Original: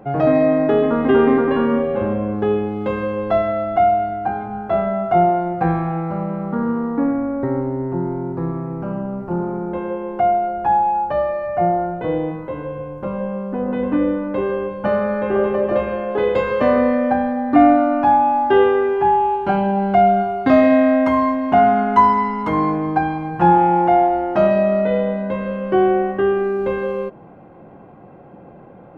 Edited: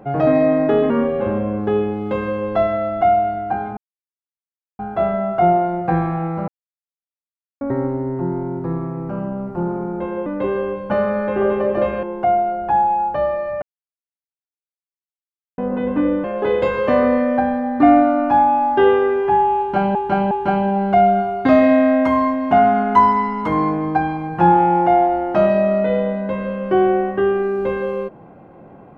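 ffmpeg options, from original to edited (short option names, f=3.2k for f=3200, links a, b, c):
-filter_complex "[0:a]asplit=12[a][b][c][d][e][f][g][h][i][j][k][l];[a]atrim=end=0.902[m];[b]atrim=start=1.648:end=4.52,asetpts=PTS-STARTPTS,afade=t=out:st=2.868:d=0.004:c=hsin,apad=pad_dur=1.02[n];[c]atrim=start=4.52:end=6.21,asetpts=PTS-STARTPTS,afade=t=in:d=0.004:c=hsin,afade=t=out:st=1.686:d=0.004:c=hsin[o];[d]atrim=start=6.21:end=7.34,asetpts=PTS-STARTPTS,volume=0[p];[e]atrim=start=7.34:end=9.992,asetpts=PTS-STARTPTS,afade=t=in:d=0.004:c=hsin[q];[f]atrim=start=14.198:end=15.972[r];[g]atrim=start=9.988:end=11.58,asetpts=PTS-STARTPTS,afade=t=out:st=1.588:d=0.004:c=hsin[s];[h]atrim=start=11.58:end=13.54,asetpts=PTS-STARTPTS,volume=0[t];[i]atrim=start=13.54:end=14.202,asetpts=PTS-STARTPTS,afade=t=in:d=0.004:c=hsin[u];[j]atrim=start=15.968:end=19.682[v];[k]atrim=start=19.318:end=19.682[w];[l]atrim=start=19.318[x];[n][o][p][q]concat=n=4:v=0:a=1[y];[m][y]acrossfade=d=0.004:c1=hsin:c2=hsin[z];[z][r]acrossfade=d=0.004:c1=hsin:c2=hsin[aa];[s][t][u]concat=n=3:v=0:a=1[ab];[aa][ab]acrossfade=d=0.004:c1=hsin:c2=hsin[ac];[ac][v]acrossfade=d=0.004:c1=hsin:c2=hsin[ad];[ad][w]acrossfade=d=0.004:c1=hsin:c2=hsin[ae];[ae][x]acrossfade=d=0.004:c1=hsin:c2=hsin"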